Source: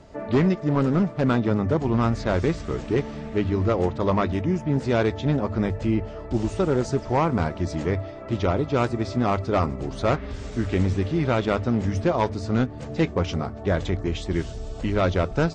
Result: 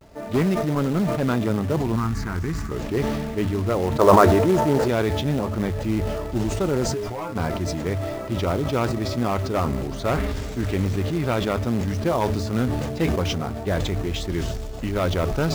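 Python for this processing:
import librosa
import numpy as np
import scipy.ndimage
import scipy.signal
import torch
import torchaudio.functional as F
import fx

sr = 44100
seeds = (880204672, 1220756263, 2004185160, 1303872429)

p1 = fx.fixed_phaser(x, sr, hz=1400.0, stages=4, at=(1.96, 2.71))
p2 = fx.band_shelf(p1, sr, hz=740.0, db=11.0, octaves=2.6, at=(3.98, 4.89))
p3 = fx.stiff_resonator(p2, sr, f0_hz=100.0, decay_s=0.22, stiffness=0.002, at=(6.92, 7.35), fade=0.02)
p4 = fx.vibrato(p3, sr, rate_hz=0.31, depth_cents=35.0)
p5 = fx.quant_companded(p4, sr, bits=4)
p6 = p4 + (p5 * 10.0 ** (-3.0 / 20.0))
p7 = fx.sustainer(p6, sr, db_per_s=27.0)
y = p7 * 10.0 ** (-6.5 / 20.0)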